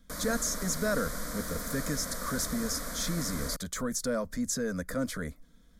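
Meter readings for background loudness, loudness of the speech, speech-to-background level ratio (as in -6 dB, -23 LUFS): -37.5 LUFS, -33.0 LUFS, 4.5 dB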